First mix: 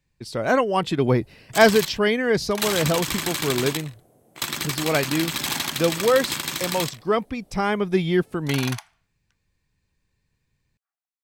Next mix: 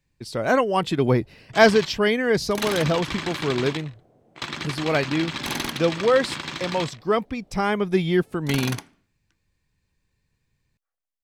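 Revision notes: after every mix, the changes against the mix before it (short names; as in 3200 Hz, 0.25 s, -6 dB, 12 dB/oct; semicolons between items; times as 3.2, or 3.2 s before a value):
first sound: add air absorption 150 m; second sound: remove brick-wall FIR high-pass 630 Hz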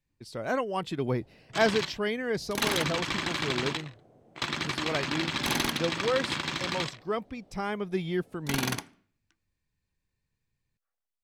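speech -9.5 dB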